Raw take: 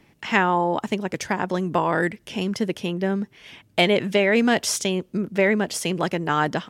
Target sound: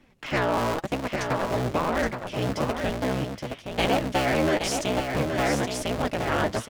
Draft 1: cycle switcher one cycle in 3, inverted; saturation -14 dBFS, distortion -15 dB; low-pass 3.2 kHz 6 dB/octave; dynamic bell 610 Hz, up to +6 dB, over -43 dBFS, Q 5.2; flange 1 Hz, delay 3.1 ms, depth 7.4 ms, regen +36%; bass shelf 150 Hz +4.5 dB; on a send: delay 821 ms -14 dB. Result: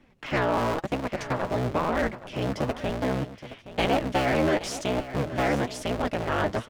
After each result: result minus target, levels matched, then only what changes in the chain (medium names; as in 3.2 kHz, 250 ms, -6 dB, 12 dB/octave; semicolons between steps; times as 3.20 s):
echo-to-direct -8 dB; 8 kHz band -4.5 dB
change: delay 821 ms -6 dB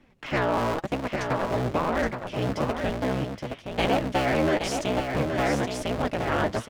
8 kHz band -4.5 dB
change: low-pass 7.5 kHz 6 dB/octave